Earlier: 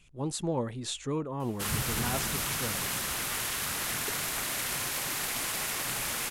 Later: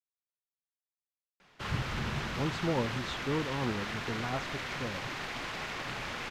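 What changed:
speech: entry +2.20 s; master: add distance through air 210 m

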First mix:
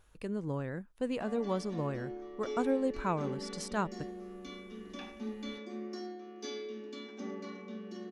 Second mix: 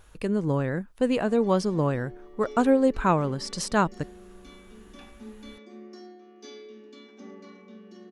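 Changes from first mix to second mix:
speech +10.5 dB; background -3.5 dB

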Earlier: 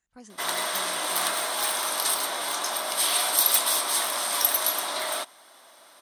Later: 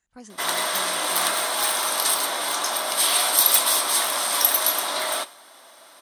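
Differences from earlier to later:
speech +4.0 dB; background: send on

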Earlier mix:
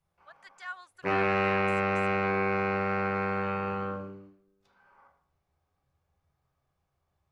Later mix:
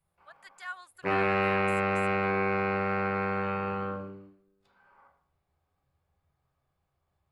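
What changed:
speech: remove distance through air 57 m; master: add peaking EQ 5.9 kHz -9.5 dB 0.22 oct

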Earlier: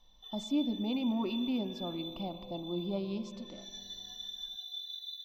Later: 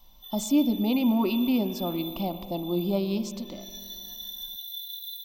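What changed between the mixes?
speech +8.5 dB; master: remove distance through air 110 m

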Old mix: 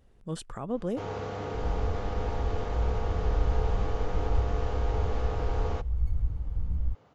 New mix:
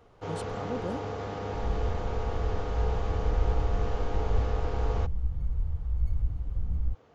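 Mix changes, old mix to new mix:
speech -4.0 dB; first sound: entry -0.75 s

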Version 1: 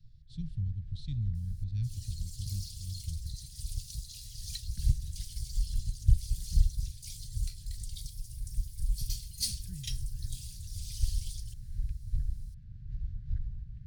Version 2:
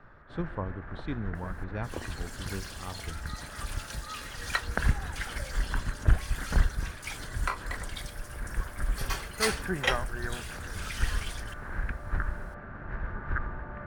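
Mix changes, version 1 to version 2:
speech -6.0 dB; master: remove Chebyshev band-stop 130–4400 Hz, order 3

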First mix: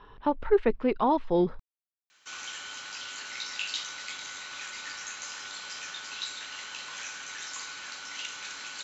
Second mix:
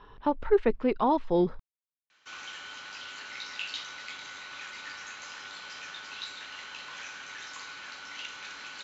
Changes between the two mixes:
speech: remove low-pass 3.6 kHz 12 dB/octave; master: add distance through air 130 m

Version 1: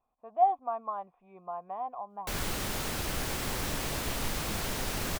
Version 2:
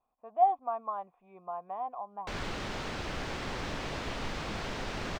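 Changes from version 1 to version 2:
background: add distance through air 150 m; master: add bass shelf 180 Hz -4.5 dB

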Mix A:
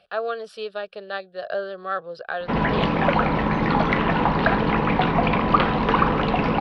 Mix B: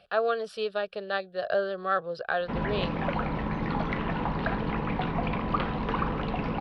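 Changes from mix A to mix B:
background -11.0 dB; master: add bass shelf 160 Hz +7 dB

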